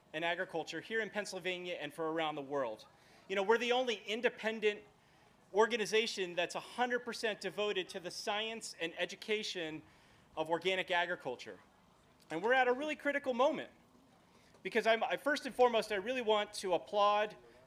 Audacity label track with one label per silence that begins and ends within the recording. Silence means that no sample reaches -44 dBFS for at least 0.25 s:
2.810000	3.300000	silence
4.780000	5.540000	silence
9.800000	10.370000	silence
11.530000	12.300000	silence
13.660000	14.650000	silence